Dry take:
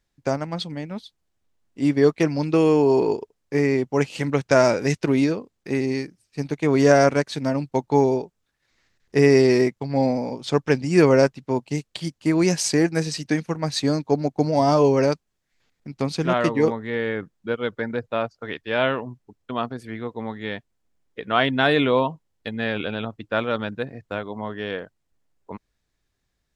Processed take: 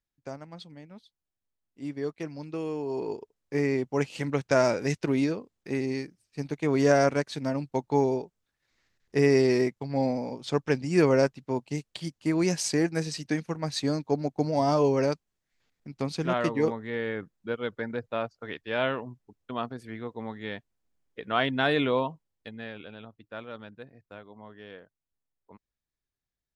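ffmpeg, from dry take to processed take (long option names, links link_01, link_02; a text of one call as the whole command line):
ffmpeg -i in.wav -af "volume=-6dB,afade=type=in:start_time=2.86:duration=0.73:silence=0.334965,afade=type=out:start_time=21.89:duration=0.89:silence=0.298538" out.wav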